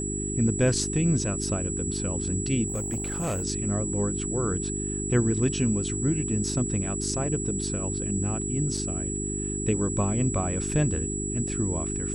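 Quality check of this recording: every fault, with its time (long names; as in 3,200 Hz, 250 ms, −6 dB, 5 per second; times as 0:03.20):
mains hum 50 Hz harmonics 8 −32 dBFS
whistle 7,800 Hz −32 dBFS
0:02.68–0:03.44: clipping −25 dBFS
0:08.77: drop-out 3.9 ms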